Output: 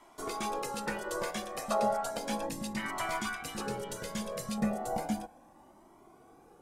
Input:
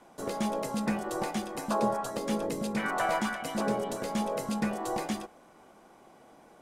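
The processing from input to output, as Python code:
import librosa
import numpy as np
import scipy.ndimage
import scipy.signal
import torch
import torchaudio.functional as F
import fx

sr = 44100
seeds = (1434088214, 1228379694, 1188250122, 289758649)

y = fx.peak_eq(x, sr, hz=fx.steps((0.0, 130.0), (2.49, 560.0), (4.58, 3000.0)), db=-8.5, octaves=2.8)
y = fx.comb_cascade(y, sr, direction='rising', hz=0.34)
y = F.gain(torch.from_numpy(y), 5.0).numpy()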